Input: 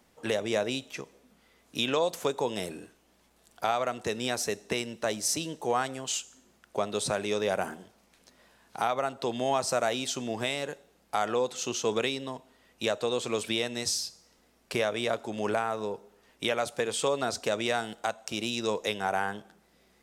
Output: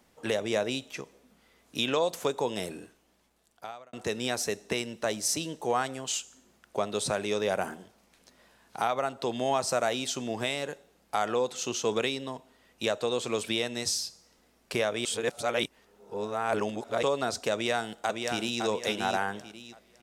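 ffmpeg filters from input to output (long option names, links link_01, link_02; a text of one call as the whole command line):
ffmpeg -i in.wav -filter_complex "[0:a]asplit=2[link_01][link_02];[link_02]afade=type=in:start_time=17.53:duration=0.01,afade=type=out:start_time=18.61:duration=0.01,aecho=0:1:560|1120|1680|2240:0.595662|0.178699|0.0536096|0.0160829[link_03];[link_01][link_03]amix=inputs=2:normalize=0,asplit=4[link_04][link_05][link_06][link_07];[link_04]atrim=end=3.93,asetpts=PTS-STARTPTS,afade=type=out:start_time=2.81:duration=1.12[link_08];[link_05]atrim=start=3.93:end=15.052,asetpts=PTS-STARTPTS,afade=type=in:duration=0.004:curve=hsin[link_09];[link_06]atrim=start=15.048:end=17.032,asetpts=PTS-STARTPTS,areverse[link_10];[link_07]atrim=start=17.028[link_11];[link_08][link_09]concat=n=2:v=0:a=1[link_12];[link_12][link_10]acrossfade=duration=0.004:curve1=hsin:curve2=hsin[link_13];[link_13][link_11]acrossfade=duration=0.004:curve1=hsin:curve2=hsin" out.wav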